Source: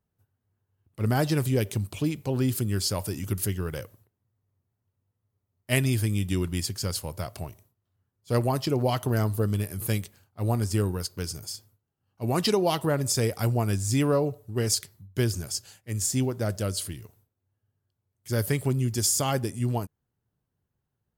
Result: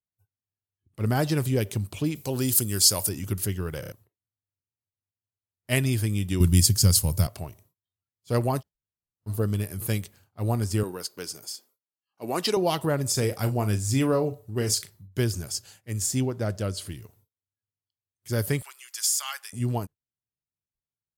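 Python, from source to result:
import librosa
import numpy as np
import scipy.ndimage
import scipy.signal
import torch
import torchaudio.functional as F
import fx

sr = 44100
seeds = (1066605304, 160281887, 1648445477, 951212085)

y = fx.bass_treble(x, sr, bass_db=-3, treble_db=13, at=(2.15, 3.09))
y = fx.bass_treble(y, sr, bass_db=13, treble_db=13, at=(6.4, 7.27))
y = fx.highpass(y, sr, hz=290.0, slope=12, at=(10.83, 12.57))
y = fx.doubler(y, sr, ms=38.0, db=-11.5, at=(13.12, 15.08))
y = fx.high_shelf(y, sr, hz=fx.line((16.2, 10000.0), (16.86, 6500.0)), db=-10.5, at=(16.2, 16.86), fade=0.02)
y = fx.highpass(y, sr, hz=1200.0, slope=24, at=(18.62, 19.53))
y = fx.edit(y, sr, fx.stutter_over(start_s=3.8, slice_s=0.03, count=4),
    fx.room_tone_fill(start_s=8.61, length_s=0.67, crossfade_s=0.04), tone=tone)
y = fx.noise_reduce_blind(y, sr, reduce_db=21)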